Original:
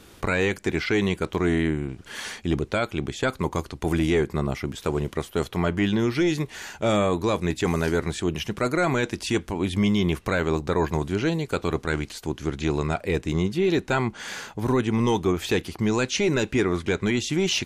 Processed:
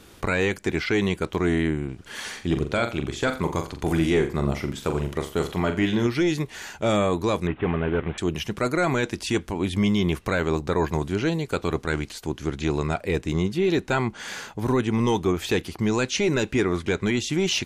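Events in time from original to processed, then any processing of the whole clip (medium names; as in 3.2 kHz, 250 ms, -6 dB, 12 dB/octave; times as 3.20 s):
2.29–6.07 s: flutter echo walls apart 7.3 m, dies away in 0.34 s
7.47–8.18 s: CVSD coder 16 kbps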